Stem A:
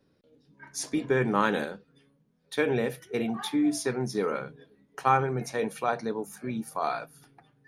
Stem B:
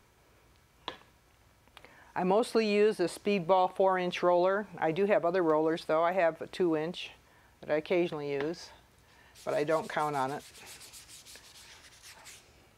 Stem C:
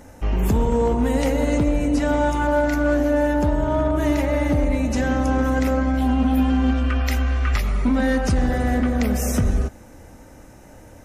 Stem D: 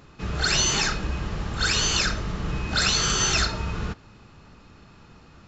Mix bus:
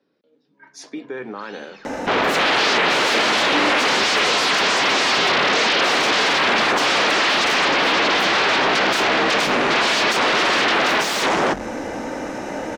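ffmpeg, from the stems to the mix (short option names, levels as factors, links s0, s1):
-filter_complex "[0:a]alimiter=limit=0.0944:level=0:latency=1:release=169,volume=1.19[s0];[1:a]adelay=300,volume=0.112[s1];[2:a]bandreject=f=46.19:t=h:w=4,bandreject=f=92.38:t=h:w=4,bandreject=f=138.57:t=h:w=4,aeval=exprs='0.282*sin(PI/2*10*val(0)/0.282)':c=same,adelay=1850,volume=0.75[s2];[3:a]lowpass=3900,adelay=950,volume=0.112[s3];[s0][s1][s2][s3]amix=inputs=4:normalize=0,acrossover=split=210 5800:gain=0.0708 1 0.0708[s4][s5][s6];[s4][s5][s6]amix=inputs=3:normalize=0"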